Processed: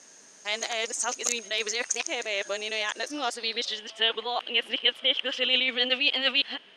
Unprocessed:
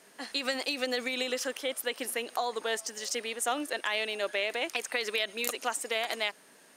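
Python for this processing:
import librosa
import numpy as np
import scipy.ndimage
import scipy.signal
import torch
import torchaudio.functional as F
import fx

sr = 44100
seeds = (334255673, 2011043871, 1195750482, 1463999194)

y = np.flip(x).copy()
y = fx.filter_sweep_lowpass(y, sr, from_hz=6400.0, to_hz=3100.0, start_s=2.98, end_s=3.87, q=7.8)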